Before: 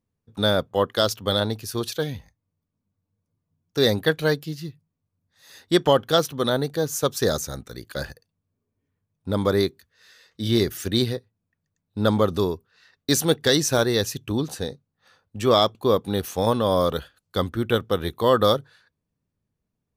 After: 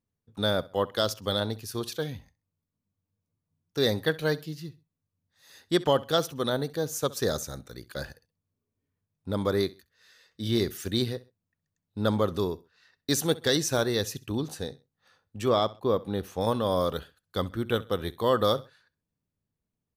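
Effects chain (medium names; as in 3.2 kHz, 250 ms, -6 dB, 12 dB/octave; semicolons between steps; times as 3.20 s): 15.48–16.41 s: treble shelf 3.4 kHz -10 dB; on a send: feedback delay 65 ms, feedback 31%, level -20.5 dB; on the sum: trim -5.5 dB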